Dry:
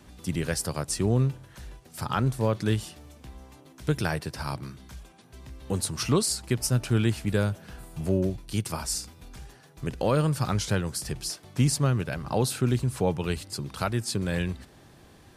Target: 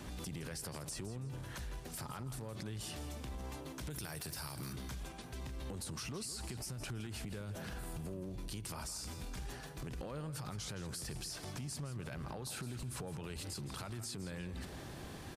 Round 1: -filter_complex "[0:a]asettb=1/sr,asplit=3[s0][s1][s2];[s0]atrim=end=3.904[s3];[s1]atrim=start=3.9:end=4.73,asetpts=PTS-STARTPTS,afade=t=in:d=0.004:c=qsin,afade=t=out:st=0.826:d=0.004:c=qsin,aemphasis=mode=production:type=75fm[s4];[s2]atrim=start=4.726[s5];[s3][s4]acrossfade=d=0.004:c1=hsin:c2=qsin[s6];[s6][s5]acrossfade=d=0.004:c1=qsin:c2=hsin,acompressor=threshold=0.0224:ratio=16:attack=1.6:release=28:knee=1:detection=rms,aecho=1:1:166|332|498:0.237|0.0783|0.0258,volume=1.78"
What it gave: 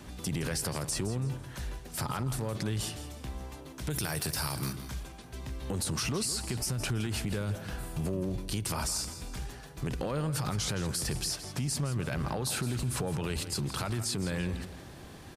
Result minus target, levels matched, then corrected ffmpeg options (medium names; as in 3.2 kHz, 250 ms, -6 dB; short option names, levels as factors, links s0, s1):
compression: peak gain reduction -11.5 dB
-filter_complex "[0:a]asettb=1/sr,asplit=3[s0][s1][s2];[s0]atrim=end=3.904[s3];[s1]atrim=start=3.9:end=4.73,asetpts=PTS-STARTPTS,afade=t=in:d=0.004:c=qsin,afade=t=out:st=0.826:d=0.004:c=qsin,aemphasis=mode=production:type=75fm[s4];[s2]atrim=start=4.726[s5];[s3][s4]acrossfade=d=0.004:c1=hsin:c2=qsin[s6];[s6][s5]acrossfade=d=0.004:c1=qsin:c2=hsin,acompressor=threshold=0.00562:ratio=16:attack=1.6:release=28:knee=1:detection=rms,aecho=1:1:166|332|498:0.237|0.0783|0.0258,volume=1.78"